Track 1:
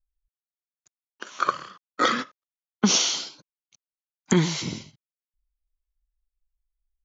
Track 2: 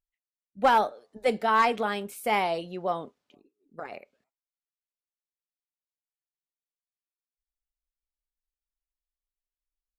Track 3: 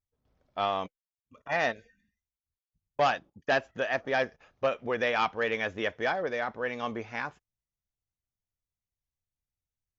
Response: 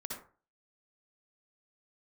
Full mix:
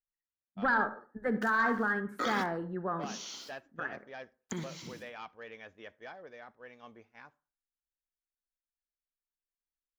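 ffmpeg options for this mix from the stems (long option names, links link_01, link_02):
-filter_complex "[0:a]acompressor=threshold=-22dB:ratio=6,aeval=exprs='val(0)*gte(abs(val(0)),0.00841)':channel_layout=same,adelay=200,volume=-5.5dB,asplit=2[link_01][link_02];[link_02]volume=-16dB[link_03];[1:a]firequalizer=gain_entry='entry(260,0);entry(630,-13);entry(1700,10);entry(2400,-26)':delay=0.05:min_phase=1,asoftclip=type=tanh:threshold=-13dB,volume=1dB,asplit=2[link_04][link_05];[link_05]volume=-11.5dB[link_06];[2:a]volume=-18.5dB,asplit=3[link_07][link_08][link_09];[link_08]volume=-23dB[link_10];[link_09]apad=whole_len=319311[link_11];[link_01][link_11]sidechaincompress=threshold=-57dB:ratio=10:attack=6.5:release=589[link_12];[link_04][link_07]amix=inputs=2:normalize=0,agate=range=-33dB:threshold=-51dB:ratio=3:detection=peak,alimiter=limit=-24dB:level=0:latency=1:release=27,volume=0dB[link_13];[3:a]atrim=start_sample=2205[link_14];[link_03][link_06][link_10]amix=inputs=3:normalize=0[link_15];[link_15][link_14]afir=irnorm=-1:irlink=0[link_16];[link_12][link_13][link_16]amix=inputs=3:normalize=0"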